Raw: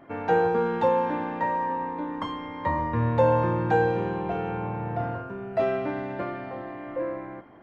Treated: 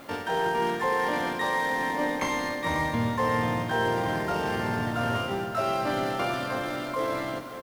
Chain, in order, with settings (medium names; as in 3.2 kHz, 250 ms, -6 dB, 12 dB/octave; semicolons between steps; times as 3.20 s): CVSD coder 32 kbps; reverse; compression 6:1, threshold -31 dBFS, peak gain reduction 14.5 dB; reverse; added noise blue -64 dBFS; harmony voices -3 st -7 dB, +12 st 0 dB; echo that smears into a reverb 509 ms, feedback 44%, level -11 dB; trim +3 dB